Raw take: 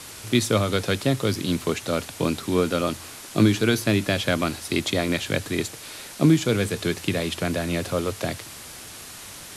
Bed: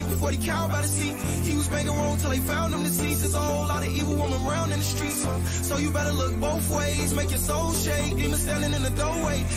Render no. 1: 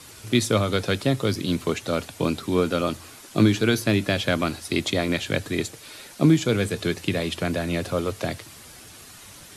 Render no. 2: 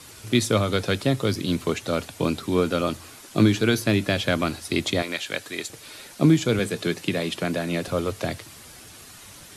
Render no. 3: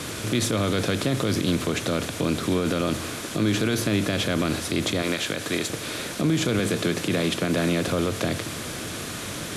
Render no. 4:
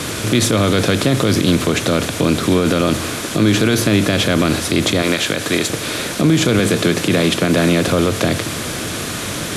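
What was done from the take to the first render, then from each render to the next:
noise reduction 7 dB, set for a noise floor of -41 dBFS
5.02–5.70 s: high-pass 860 Hz 6 dB/octave; 6.59–7.88 s: high-pass 120 Hz 24 dB/octave
spectral levelling over time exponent 0.6; peak limiter -14 dBFS, peak gain reduction 10.5 dB
trim +9 dB

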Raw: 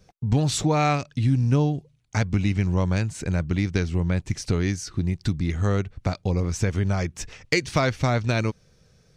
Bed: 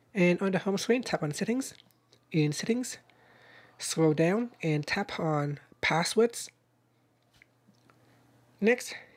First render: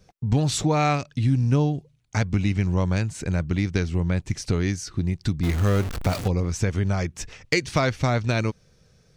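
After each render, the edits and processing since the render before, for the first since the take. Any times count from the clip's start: 5.43–6.28 s: jump at every zero crossing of -25.5 dBFS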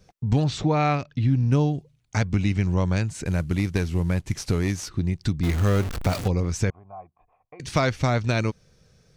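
0.44–1.52 s: distance through air 140 m; 3.25–4.89 s: CVSD coder 64 kbps; 6.70–7.60 s: cascade formant filter a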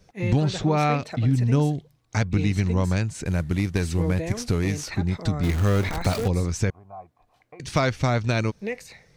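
add bed -6 dB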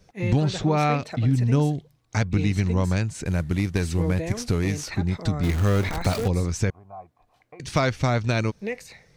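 no audible change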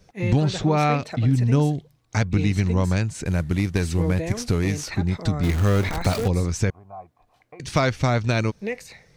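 trim +1.5 dB

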